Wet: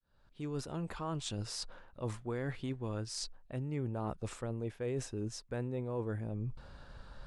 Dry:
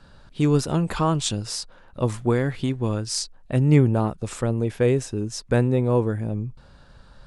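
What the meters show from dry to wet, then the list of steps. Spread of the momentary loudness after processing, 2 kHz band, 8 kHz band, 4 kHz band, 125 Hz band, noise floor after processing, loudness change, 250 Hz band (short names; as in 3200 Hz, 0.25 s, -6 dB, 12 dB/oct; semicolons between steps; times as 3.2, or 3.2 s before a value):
5 LU, -14.5 dB, -14.0 dB, -12.5 dB, -16.5 dB, -64 dBFS, -16.5 dB, -17.0 dB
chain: opening faded in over 1.40 s; bell 170 Hz -3.5 dB 1.8 oct; reverse; compressor 6:1, threshold -34 dBFS, peak gain reduction 19 dB; reverse; high shelf 4200 Hz -6 dB; gain -1 dB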